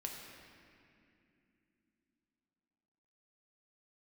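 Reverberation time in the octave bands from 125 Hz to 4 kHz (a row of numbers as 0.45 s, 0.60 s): 3.6 s, 4.5 s, 3.1 s, 2.3 s, 2.7 s, 1.9 s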